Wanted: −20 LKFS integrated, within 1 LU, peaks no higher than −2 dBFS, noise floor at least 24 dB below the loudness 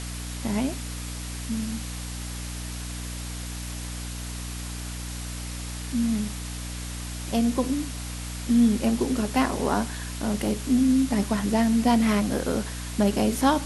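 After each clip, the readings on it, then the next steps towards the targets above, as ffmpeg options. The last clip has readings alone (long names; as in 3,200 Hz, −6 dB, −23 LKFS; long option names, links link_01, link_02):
mains hum 60 Hz; hum harmonics up to 300 Hz; level of the hum −33 dBFS; background noise floor −34 dBFS; target noise floor −51 dBFS; integrated loudness −27.0 LKFS; sample peak −8.0 dBFS; target loudness −20.0 LKFS
→ -af "bandreject=frequency=60:width_type=h:width=4,bandreject=frequency=120:width_type=h:width=4,bandreject=frequency=180:width_type=h:width=4,bandreject=frequency=240:width_type=h:width=4,bandreject=frequency=300:width_type=h:width=4"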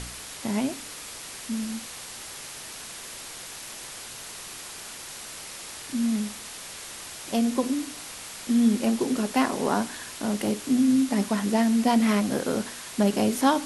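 mains hum none found; background noise floor −40 dBFS; target noise floor −52 dBFS
→ -af "afftdn=noise_reduction=12:noise_floor=-40"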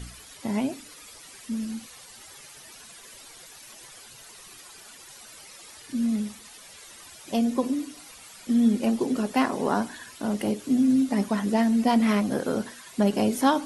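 background noise floor −48 dBFS; target noise floor −50 dBFS
→ -af "afftdn=noise_reduction=6:noise_floor=-48"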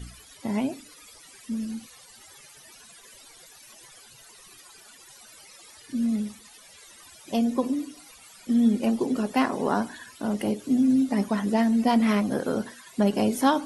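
background noise floor −51 dBFS; integrated loudness −25.5 LKFS; sample peak −9.0 dBFS; target loudness −20.0 LKFS
→ -af "volume=5.5dB"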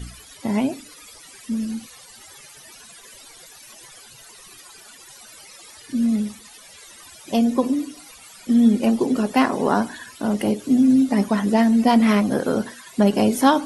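integrated loudness −20.0 LKFS; sample peak −3.5 dBFS; background noise floor −45 dBFS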